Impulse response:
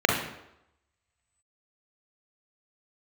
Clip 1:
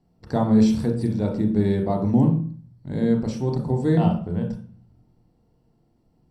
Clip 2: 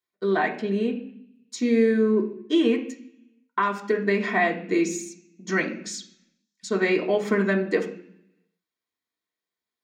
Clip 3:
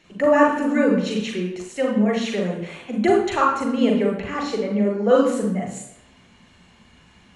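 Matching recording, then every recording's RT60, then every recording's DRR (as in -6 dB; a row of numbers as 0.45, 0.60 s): 3; 0.45, 0.60, 0.85 s; 2.0, 0.0, 0.0 dB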